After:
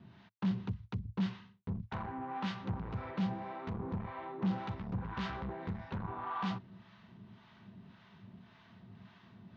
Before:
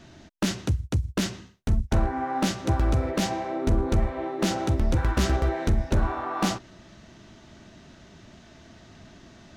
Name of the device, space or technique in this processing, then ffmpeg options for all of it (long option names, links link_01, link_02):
guitar amplifier with harmonic tremolo: -filter_complex "[0:a]acrossover=split=640[link_01][link_02];[link_01]aeval=exprs='val(0)*(1-0.7/2+0.7/2*cos(2*PI*1.8*n/s))':channel_layout=same[link_03];[link_02]aeval=exprs='val(0)*(1-0.7/2-0.7/2*cos(2*PI*1.8*n/s))':channel_layout=same[link_04];[link_03][link_04]amix=inputs=2:normalize=0,asoftclip=type=tanh:threshold=-27.5dB,highpass=99,equalizer=frequency=110:width_type=q:width=4:gain=9,equalizer=frequency=190:width_type=q:width=4:gain=10,equalizer=frequency=310:width_type=q:width=4:gain=-9,equalizer=frequency=600:width_type=q:width=4:gain=-8,equalizer=frequency=1000:width_type=q:width=4:gain=7,lowpass=frequency=3800:width=0.5412,lowpass=frequency=3800:width=1.3066,volume=-6dB"